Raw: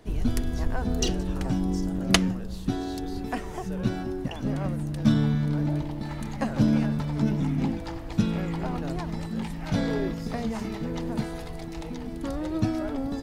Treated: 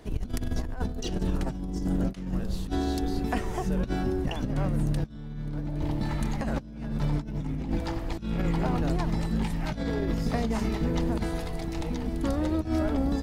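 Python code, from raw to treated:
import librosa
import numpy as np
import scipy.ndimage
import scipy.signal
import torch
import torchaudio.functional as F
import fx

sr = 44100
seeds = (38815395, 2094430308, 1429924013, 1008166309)

y = fx.octave_divider(x, sr, octaves=2, level_db=-1.0)
y = fx.over_compress(y, sr, threshold_db=-27.0, ratio=-0.5)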